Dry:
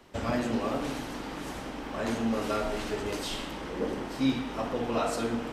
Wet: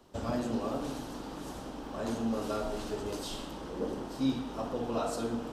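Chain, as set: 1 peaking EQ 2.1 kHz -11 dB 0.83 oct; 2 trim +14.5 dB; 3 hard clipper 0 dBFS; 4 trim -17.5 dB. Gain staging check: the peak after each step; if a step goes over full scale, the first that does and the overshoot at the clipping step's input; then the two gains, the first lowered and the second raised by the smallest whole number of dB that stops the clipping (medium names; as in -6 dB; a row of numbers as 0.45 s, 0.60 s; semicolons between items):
-16.0 dBFS, -1.5 dBFS, -1.5 dBFS, -19.0 dBFS; nothing clips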